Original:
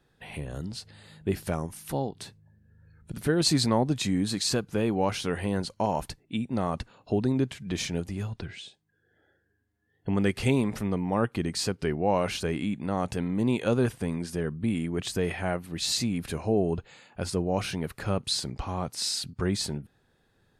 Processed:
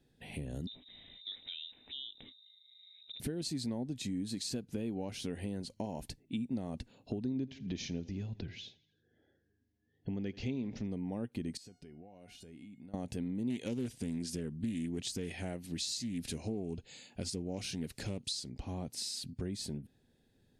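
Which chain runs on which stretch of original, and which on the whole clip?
0:00.67–0:03.20: downward compressor 2 to 1, threshold −44 dBFS + voice inversion scrambler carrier 3,800 Hz
0:07.24–0:10.87: Butterworth low-pass 6,500 Hz 72 dB per octave + repeating echo 83 ms, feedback 53%, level −23 dB
0:11.57–0:12.94: tuned comb filter 720 Hz, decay 0.28 s, mix 80% + downward compressor 8 to 1, threshold −46 dBFS
0:13.50–0:18.49: parametric band 5,900 Hz +9.5 dB 1.9 octaves + highs frequency-modulated by the lows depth 0.23 ms
whole clip: parametric band 1,200 Hz −15 dB 0.95 octaves; downward compressor, threshold −34 dBFS; parametric band 250 Hz +7 dB 0.42 octaves; level −3 dB

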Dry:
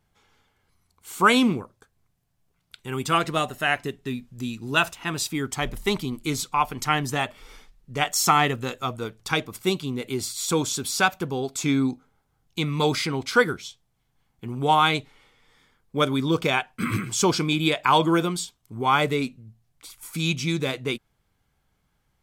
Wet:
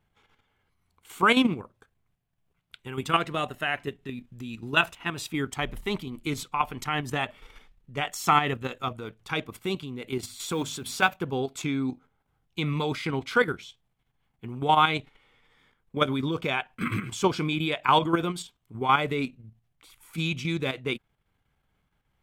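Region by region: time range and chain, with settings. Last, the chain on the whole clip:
0:10.18–0:11.13: mains-hum notches 50/100/150/200/250 Hz + log-companded quantiser 6 bits
whole clip: high shelf with overshoot 3,900 Hz −6 dB, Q 1.5; output level in coarse steps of 9 dB

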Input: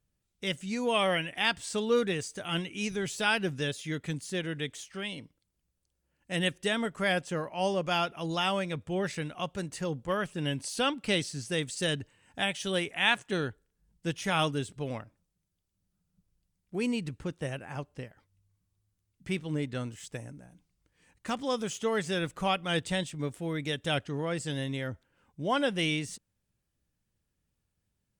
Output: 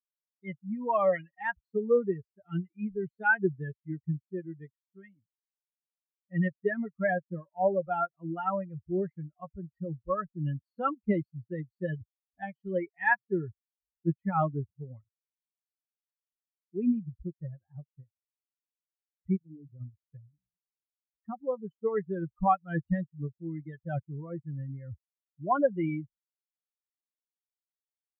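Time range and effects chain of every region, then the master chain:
0:19.36–0:19.81: mains-hum notches 50/100/150/200 Hz + downward compressor 1.5 to 1, threshold −39 dBFS + Gaussian smoothing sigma 6 samples
whole clip: spectral dynamics exaggerated over time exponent 3; elliptic low-pass filter 1,700 Hz, stop band 70 dB; comb filter 5.3 ms, depth 33%; level +8.5 dB

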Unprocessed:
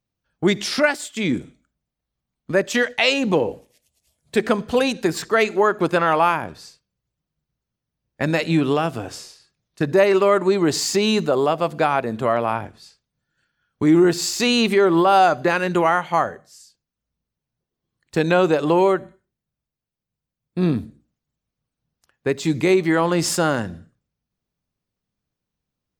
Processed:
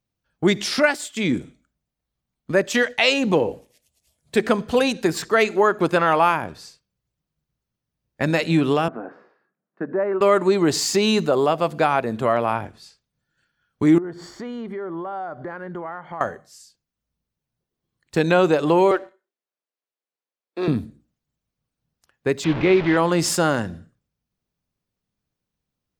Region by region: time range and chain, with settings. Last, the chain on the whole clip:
0:08.88–0:10.21: Chebyshev band-pass filter 200–1,600 Hz, order 3 + downward compressor 1.5 to 1, threshold −30 dBFS
0:13.98–0:16.21: Savitzky-Golay smoothing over 41 samples + downward compressor 3 to 1, threshold −33 dBFS
0:18.91–0:20.68: high-pass filter 370 Hz 24 dB per octave + high-frequency loss of the air 86 metres + leveller curve on the samples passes 1
0:22.44–0:22.97: linear delta modulator 64 kbit/s, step −20 dBFS + low-pass filter 3,400 Hz 24 dB per octave
whole clip: no processing

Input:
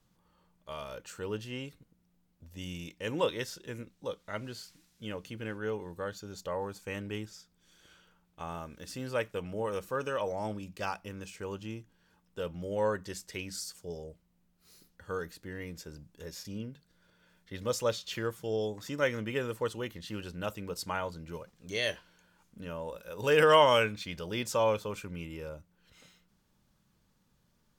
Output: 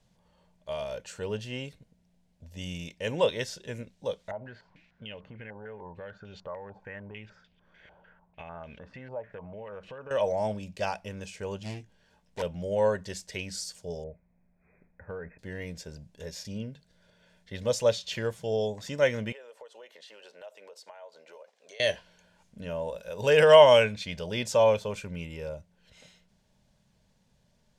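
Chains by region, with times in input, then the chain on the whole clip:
0:04.31–0:10.11: downward compressor 5 to 1, threshold −45 dBFS + low-pass on a step sequencer 6.7 Hz 840–2,900 Hz
0:11.63–0:12.42: phase distortion by the signal itself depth 0.56 ms + double-tracking delay 20 ms −8 dB
0:14.04–0:15.39: linear-phase brick-wall low-pass 2,600 Hz + downward compressor 4 to 1, threshold −38 dBFS
0:19.32–0:21.80: high-pass filter 500 Hz 24 dB per octave + spectral tilt −2 dB per octave + downward compressor, threshold −50 dBFS
whole clip: low-pass filter 8,800 Hz 12 dB per octave; de-essing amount 65%; thirty-one-band graphic EQ 315 Hz −10 dB, 630 Hz +7 dB, 1,250 Hz −11 dB; level +4 dB

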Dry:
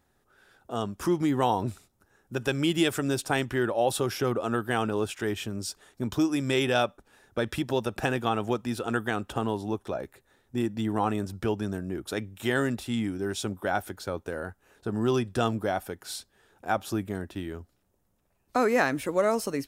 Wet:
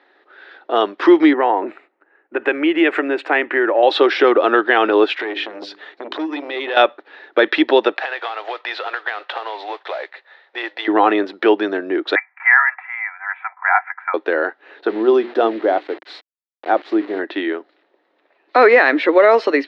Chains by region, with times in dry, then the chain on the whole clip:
0:01.33–0:03.83: flat-topped bell 4,500 Hz −15 dB 1.1 octaves + downward compressor 3 to 1, threshold −28 dBFS + multiband upward and downward expander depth 40%
0:05.15–0:06.77: mains-hum notches 50/100/150/200/250/300/350/400 Hz + downward compressor 10 to 1, threshold −33 dBFS + saturating transformer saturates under 820 Hz
0:07.95–0:10.88: high-pass filter 570 Hz 24 dB per octave + downward compressor 16 to 1, threshold −37 dBFS + noise that follows the level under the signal 11 dB
0:12.15–0:14.14: Chebyshev band-pass filter 770–2,300 Hz, order 5 + comb filter 3 ms, depth 60%
0:14.89–0:17.19: parametric band 2,600 Hz −14.5 dB 2.7 octaves + mains-hum notches 60/120/180/240/300/360/420 Hz + centre clipping without the shift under −46 dBFS
whole clip: Chebyshev band-pass filter 310–4,100 Hz, order 4; parametric band 1,900 Hz +7 dB 0.42 octaves; boost into a limiter +17.5 dB; level −1 dB

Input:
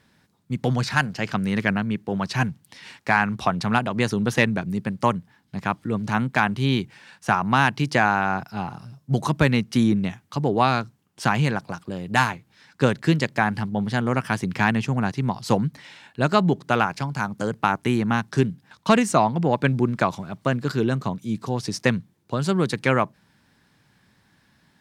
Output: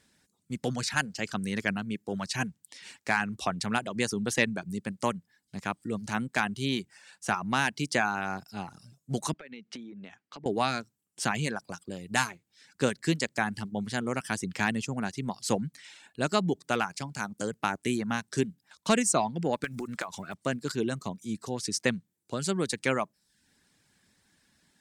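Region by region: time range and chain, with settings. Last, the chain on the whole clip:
0:09.33–0:10.46: band-pass filter 220–3,300 Hz + downward compressor 16 to 1, threshold −32 dBFS
0:19.64–0:20.34: one scale factor per block 7 bits + parametric band 1,500 Hz +9 dB 2.2 octaves + downward compressor 8 to 1, threshold −23 dBFS
whole clip: reverb reduction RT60 0.51 s; graphic EQ with 10 bands 125 Hz −7 dB, 1,000 Hz −5 dB, 8,000 Hz +11 dB; level −5 dB

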